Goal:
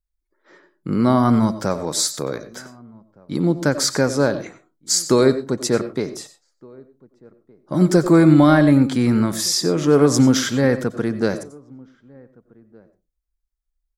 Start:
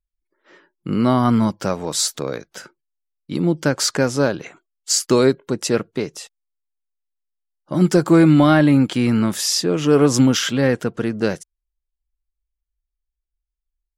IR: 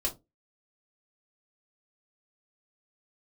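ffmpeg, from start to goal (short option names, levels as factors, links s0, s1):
-filter_complex "[0:a]equalizer=f=2800:w=4.5:g=-12,asplit=2[s0][s1];[s1]adelay=1516,volume=0.0447,highshelf=f=4000:g=-34.1[s2];[s0][s2]amix=inputs=2:normalize=0,asplit=2[s3][s4];[1:a]atrim=start_sample=2205,adelay=88[s5];[s4][s5]afir=irnorm=-1:irlink=0,volume=0.133[s6];[s3][s6]amix=inputs=2:normalize=0"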